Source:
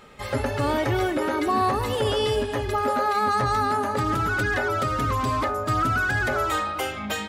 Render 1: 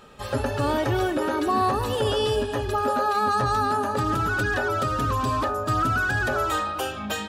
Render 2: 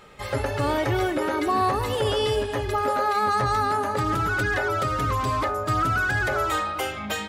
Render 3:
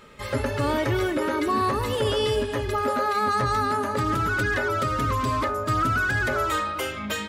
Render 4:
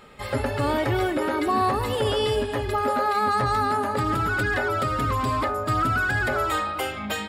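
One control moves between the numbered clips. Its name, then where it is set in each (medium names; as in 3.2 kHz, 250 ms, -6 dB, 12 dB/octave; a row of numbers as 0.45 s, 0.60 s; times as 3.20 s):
band-stop, frequency: 2.1 kHz, 240 Hz, 770 Hz, 6.1 kHz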